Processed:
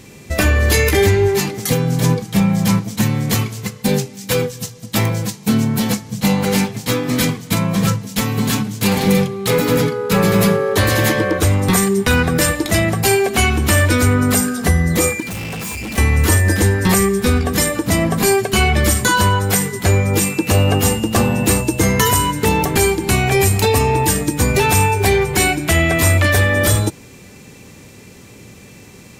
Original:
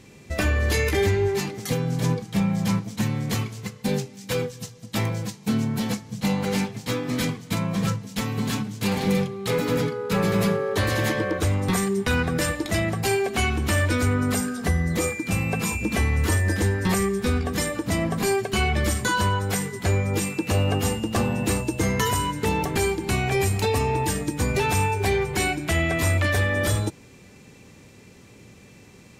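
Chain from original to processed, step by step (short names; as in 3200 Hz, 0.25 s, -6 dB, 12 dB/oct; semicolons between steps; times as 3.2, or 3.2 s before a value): high shelf 10000 Hz +10 dB; 15.2–15.98 overloaded stage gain 32.5 dB; gain +8 dB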